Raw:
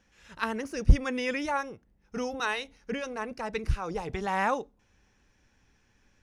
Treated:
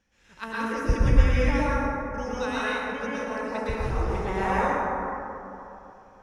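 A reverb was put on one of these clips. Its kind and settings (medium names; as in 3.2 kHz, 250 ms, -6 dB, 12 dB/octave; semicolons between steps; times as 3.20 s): plate-style reverb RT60 3.1 s, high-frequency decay 0.3×, pre-delay 100 ms, DRR -9.5 dB; trim -6 dB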